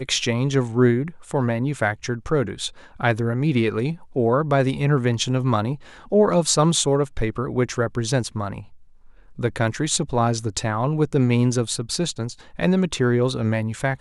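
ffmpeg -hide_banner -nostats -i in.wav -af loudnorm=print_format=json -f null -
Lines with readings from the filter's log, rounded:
"input_i" : "-22.0",
"input_tp" : "-5.7",
"input_lra" : "3.5",
"input_thresh" : "-32.2",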